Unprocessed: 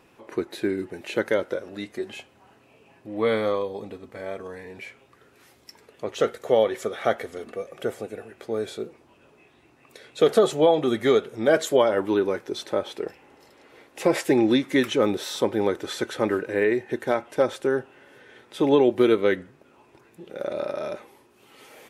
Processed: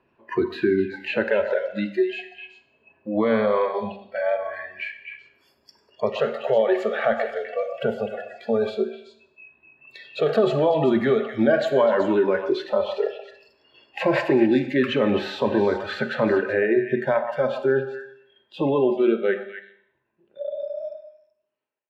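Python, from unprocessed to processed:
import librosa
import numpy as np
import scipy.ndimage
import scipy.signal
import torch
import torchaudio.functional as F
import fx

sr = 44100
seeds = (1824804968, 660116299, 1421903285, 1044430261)

p1 = fx.fade_out_tail(x, sr, length_s=6.68)
p2 = fx.over_compress(p1, sr, threshold_db=-27.0, ratio=-1.0)
p3 = p1 + F.gain(torch.from_numpy(p2), 1.5).numpy()
p4 = fx.air_absorb(p3, sr, metres=340.0)
p5 = fx.hum_notches(p4, sr, base_hz=60, count=10)
p6 = fx.noise_reduce_blind(p5, sr, reduce_db=29)
p7 = fx.ripple_eq(p6, sr, per_octave=1.4, db=7)
p8 = p7 + fx.echo_stepped(p7, sr, ms=126, hz=860.0, octaves=1.4, feedback_pct=70, wet_db=-5.5, dry=0)
p9 = fx.rev_schroeder(p8, sr, rt60_s=0.63, comb_ms=31, drr_db=11.5)
y = fx.band_squash(p9, sr, depth_pct=40)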